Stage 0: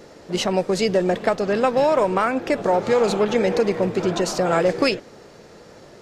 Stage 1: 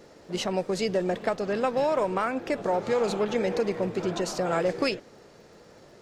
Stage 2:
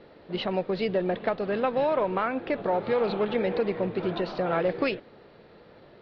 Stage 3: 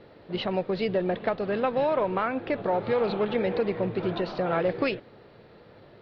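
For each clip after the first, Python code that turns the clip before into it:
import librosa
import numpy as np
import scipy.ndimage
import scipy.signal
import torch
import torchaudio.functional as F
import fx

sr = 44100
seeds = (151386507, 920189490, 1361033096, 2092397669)

y1 = fx.dmg_crackle(x, sr, seeds[0], per_s=59.0, level_db=-48.0)
y1 = y1 * 10.0 ** (-7.0 / 20.0)
y2 = scipy.signal.sosfilt(scipy.signal.butter(8, 4200.0, 'lowpass', fs=sr, output='sos'), y1)
y3 = fx.peak_eq(y2, sr, hz=110.0, db=7.5, octaves=0.49)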